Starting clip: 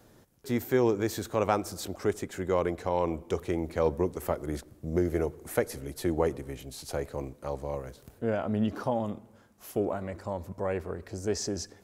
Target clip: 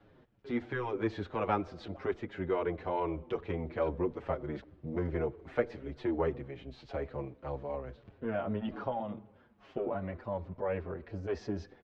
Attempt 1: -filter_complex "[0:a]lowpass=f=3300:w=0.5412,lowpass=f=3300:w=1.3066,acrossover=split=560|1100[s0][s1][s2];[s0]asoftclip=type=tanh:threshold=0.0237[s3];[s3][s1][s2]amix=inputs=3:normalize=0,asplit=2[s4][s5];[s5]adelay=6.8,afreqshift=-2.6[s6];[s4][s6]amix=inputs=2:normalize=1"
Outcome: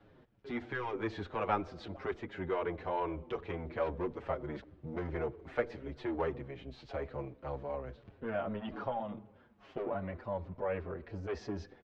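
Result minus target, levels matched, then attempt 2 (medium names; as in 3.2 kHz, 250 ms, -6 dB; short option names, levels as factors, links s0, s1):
saturation: distortion +10 dB
-filter_complex "[0:a]lowpass=f=3300:w=0.5412,lowpass=f=3300:w=1.3066,acrossover=split=560|1100[s0][s1][s2];[s0]asoftclip=type=tanh:threshold=0.075[s3];[s3][s1][s2]amix=inputs=3:normalize=0,asplit=2[s4][s5];[s5]adelay=6.8,afreqshift=-2.6[s6];[s4][s6]amix=inputs=2:normalize=1"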